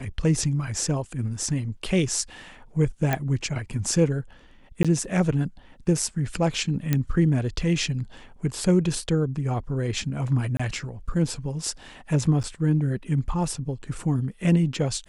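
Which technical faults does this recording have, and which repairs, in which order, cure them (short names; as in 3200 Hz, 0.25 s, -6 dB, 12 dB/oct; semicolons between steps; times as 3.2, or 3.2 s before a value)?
3.13 pop -10 dBFS
4.83–4.85 gap 16 ms
6.93 pop -9 dBFS
10.57–10.6 gap 25 ms
12.43–12.44 gap 8.8 ms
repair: de-click; interpolate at 4.83, 16 ms; interpolate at 10.57, 25 ms; interpolate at 12.43, 8.8 ms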